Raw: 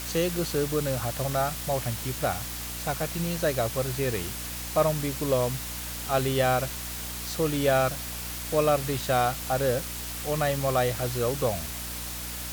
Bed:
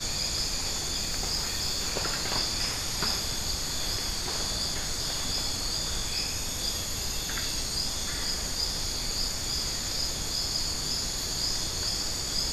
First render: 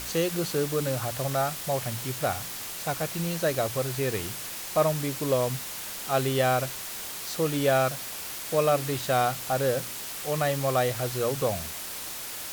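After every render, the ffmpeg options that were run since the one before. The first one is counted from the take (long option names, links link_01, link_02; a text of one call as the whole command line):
ffmpeg -i in.wav -af "bandreject=frequency=60:width_type=h:width=4,bandreject=frequency=120:width_type=h:width=4,bandreject=frequency=180:width_type=h:width=4,bandreject=frequency=240:width_type=h:width=4,bandreject=frequency=300:width_type=h:width=4" out.wav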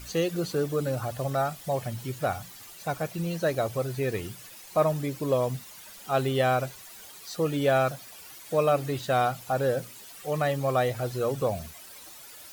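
ffmpeg -i in.wav -af "afftdn=noise_reduction=13:noise_floor=-37" out.wav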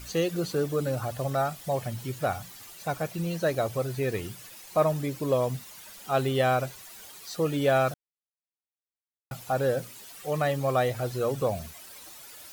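ffmpeg -i in.wav -filter_complex "[0:a]asplit=3[link_01][link_02][link_03];[link_01]atrim=end=7.94,asetpts=PTS-STARTPTS,afade=type=out:start_time=7.936:duration=0.004:curve=hsin[link_04];[link_02]atrim=start=7.94:end=9.31,asetpts=PTS-STARTPTS,volume=0[link_05];[link_03]atrim=start=9.31,asetpts=PTS-STARTPTS,afade=type=in:duration=0.004:curve=hsin[link_06];[link_04][link_05][link_06]concat=n=3:v=0:a=1" out.wav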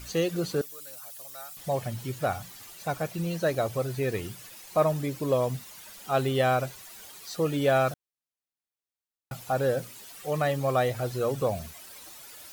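ffmpeg -i in.wav -filter_complex "[0:a]asettb=1/sr,asplit=3[link_01][link_02][link_03];[link_01]atrim=end=0.614[link_04];[link_02]atrim=start=0.61:end=1.57,asetpts=PTS-STARTPTS,afade=type=in:duration=0.004:curve=qsin,afade=type=out:start_time=0.956:duration=0.004:curve=qsin,aderivative[link_05];[link_03]atrim=start=1.566[link_06];[link_04][link_05]acrossfade=duration=0.004:curve1=hsin:curve2=qsin[link_07];[link_07][link_06]acrossfade=duration=0.004:curve1=qsin:curve2=hsin" out.wav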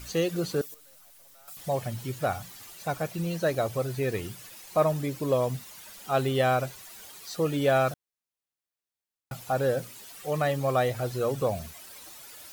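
ffmpeg -i in.wav -filter_complex "[0:a]asettb=1/sr,asplit=3[link_01][link_02][link_03];[link_01]atrim=end=0.744[link_04];[link_02]atrim=start=0.74:end=1.48,asetpts=PTS-STARTPTS,afade=type=in:duration=0.004:curve=qsin,afade=type=out:start_time=0.736:duration=0.004:curve=qsin,aeval=exprs='(tanh(501*val(0)+0.55)-tanh(0.55))/501':channel_layout=same[link_05];[link_03]atrim=start=1.476[link_06];[link_04][link_05]acrossfade=duration=0.004:curve1=hsin:curve2=qsin[link_07];[link_07][link_06]acrossfade=duration=0.004:curve1=qsin:curve2=hsin" out.wav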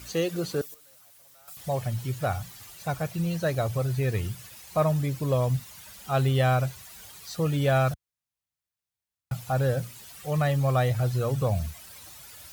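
ffmpeg -i in.wav -af "highpass=62,asubboost=boost=6.5:cutoff=120" out.wav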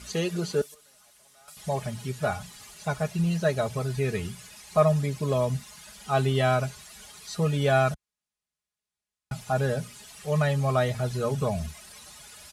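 ffmpeg -i in.wav -af "lowpass=frequency=11000:width=0.5412,lowpass=frequency=11000:width=1.3066,aecho=1:1:4.8:0.67" out.wav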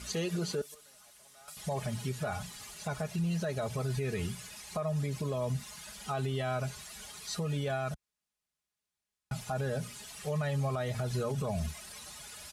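ffmpeg -i in.wav -af "acompressor=threshold=-26dB:ratio=6,alimiter=level_in=1.5dB:limit=-24dB:level=0:latency=1:release=51,volume=-1.5dB" out.wav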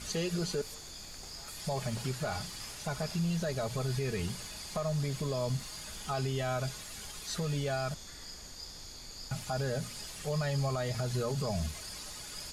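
ffmpeg -i in.wav -i bed.wav -filter_complex "[1:a]volume=-16dB[link_01];[0:a][link_01]amix=inputs=2:normalize=0" out.wav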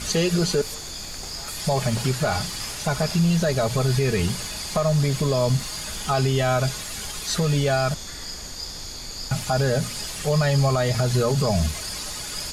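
ffmpeg -i in.wav -af "volume=12dB" out.wav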